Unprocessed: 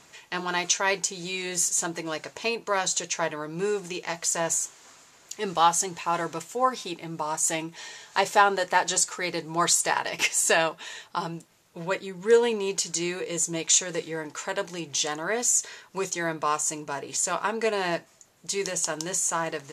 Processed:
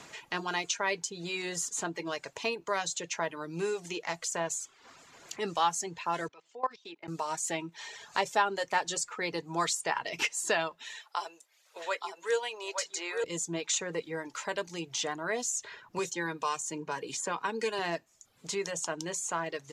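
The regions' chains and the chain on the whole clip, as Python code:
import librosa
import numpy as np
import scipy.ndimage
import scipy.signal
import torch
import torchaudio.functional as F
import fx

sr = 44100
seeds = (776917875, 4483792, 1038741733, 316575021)

y = fx.chain(x, sr, fx.highpass(hz=340.0, slope=12),
    fx.air_absorb(metres=170.0),
    fx.level_steps(step_db=21), at=(6.28, 7.08))
y = fx.chain(y, sr, fx.highpass(hz=510.0, slope=24),
    fx.echo_single(ms=870, db=-5.5), at=(10.95, 13.24))
y = fx.chain(y, sr, fx.notch_comb(f0_hz=670.0),
    fx.band_squash(depth_pct=40), at=(15.98, 17.79))
y = fx.high_shelf(y, sr, hz=8700.0, db=-10.0)
y = fx.dereverb_blind(y, sr, rt60_s=0.58)
y = fx.band_squash(y, sr, depth_pct=40)
y = F.gain(torch.from_numpy(y), -4.5).numpy()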